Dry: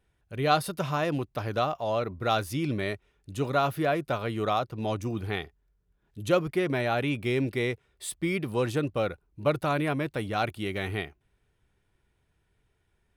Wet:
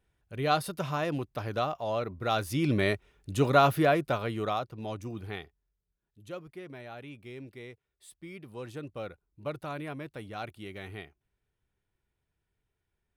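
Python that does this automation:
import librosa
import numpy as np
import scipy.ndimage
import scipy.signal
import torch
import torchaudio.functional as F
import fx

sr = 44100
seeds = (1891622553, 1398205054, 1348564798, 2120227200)

y = fx.gain(x, sr, db=fx.line((2.31, -3.0), (2.79, 4.0), (3.72, 4.0), (4.82, -7.0), (5.34, -7.0), (6.21, -17.0), (8.21, -17.0), (9.04, -10.5)))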